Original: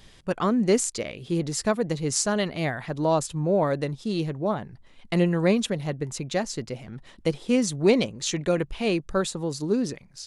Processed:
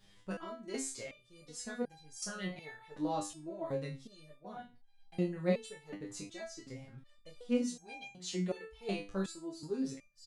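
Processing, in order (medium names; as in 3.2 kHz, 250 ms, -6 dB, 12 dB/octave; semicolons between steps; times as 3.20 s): early reflections 26 ms -3.5 dB, 57 ms -16.5 dB; 7.61–8.81 s: frequency shift +25 Hz; resonator arpeggio 2.7 Hz 100–800 Hz; trim -3 dB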